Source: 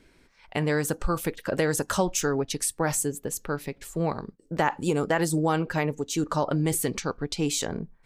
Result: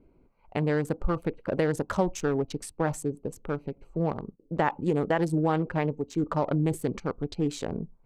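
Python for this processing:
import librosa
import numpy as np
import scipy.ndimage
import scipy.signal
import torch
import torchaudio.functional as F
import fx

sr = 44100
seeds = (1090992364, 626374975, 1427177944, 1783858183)

y = fx.wiener(x, sr, points=25)
y = fx.lowpass(y, sr, hz=2000.0, slope=6)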